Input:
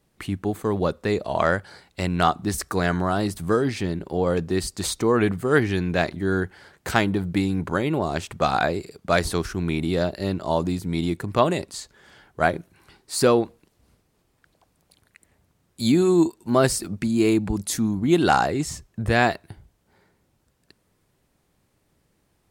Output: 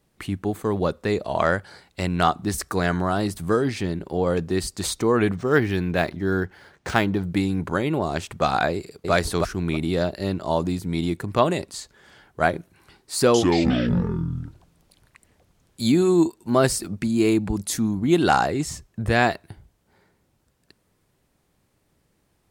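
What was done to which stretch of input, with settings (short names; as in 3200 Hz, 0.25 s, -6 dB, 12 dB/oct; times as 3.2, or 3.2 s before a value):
5.35–7.23 decimation joined by straight lines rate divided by 3×
8.72–9.12 echo throw 0.32 s, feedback 20%, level -1.5 dB
13.16–15.95 echoes that change speed 0.179 s, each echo -6 st, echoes 3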